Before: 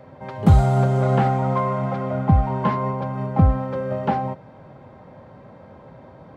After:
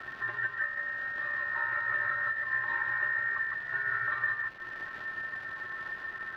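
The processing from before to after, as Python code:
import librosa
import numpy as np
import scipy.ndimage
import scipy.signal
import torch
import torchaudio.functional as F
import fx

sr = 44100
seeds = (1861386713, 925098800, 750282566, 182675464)

y = fx.band_invert(x, sr, width_hz=2000)
y = fx.peak_eq(y, sr, hz=2000.0, db=11.5, octaves=0.6)
y = fx.transient(y, sr, attack_db=1, sustain_db=-12)
y = fx.over_compress(y, sr, threshold_db=-19.0, ratio=-1.0)
y = fx.comb_fb(y, sr, f0_hz=120.0, decay_s=0.16, harmonics='odd', damping=0.0, mix_pct=100)
y = fx.dmg_crackle(y, sr, seeds[0], per_s=400.0, level_db=-35.0)
y = fx.air_absorb(y, sr, metres=340.0)
y = y + 10.0 ** (-3.5 / 20.0) * np.pad(y, (int(155 * sr / 1000.0), 0))[:len(y)]
y = fx.band_squash(y, sr, depth_pct=40)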